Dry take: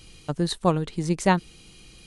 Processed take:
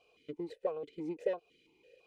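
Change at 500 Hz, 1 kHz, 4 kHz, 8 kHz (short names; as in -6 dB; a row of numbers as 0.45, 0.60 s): -8.5 dB, -22.0 dB, under -25 dB, under -30 dB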